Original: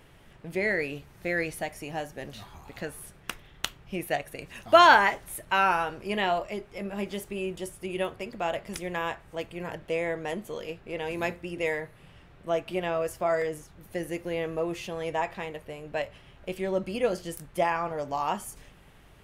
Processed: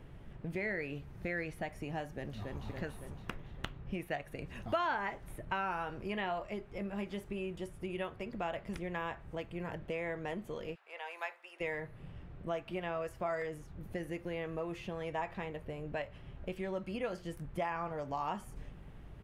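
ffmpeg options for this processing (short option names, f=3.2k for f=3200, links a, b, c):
-filter_complex "[0:a]asplit=2[a][b];[b]afade=t=in:st=2.11:d=0.01,afade=t=out:st=2.66:d=0.01,aecho=0:1:280|560|840|1120|1400|1680|1960|2240|2520:0.668344|0.401006|0.240604|0.144362|0.0866174|0.0519704|0.0311823|0.0187094|0.0112256[c];[a][c]amix=inputs=2:normalize=0,asplit=3[d][e][f];[d]afade=t=out:st=10.74:d=0.02[g];[e]highpass=f=810:w=0.5412,highpass=f=810:w=1.3066,afade=t=in:st=10.74:d=0.02,afade=t=out:st=11.6:d=0.02[h];[f]afade=t=in:st=11.6:d=0.02[i];[g][h][i]amix=inputs=3:normalize=0,highshelf=f=3.4k:g=-10,acrossover=split=880|3400[j][k][l];[j]acompressor=threshold=-41dB:ratio=4[m];[k]acompressor=threshold=-33dB:ratio=4[n];[l]acompressor=threshold=-55dB:ratio=4[o];[m][n][o]amix=inputs=3:normalize=0,lowshelf=f=360:g=10.5,volume=-4dB"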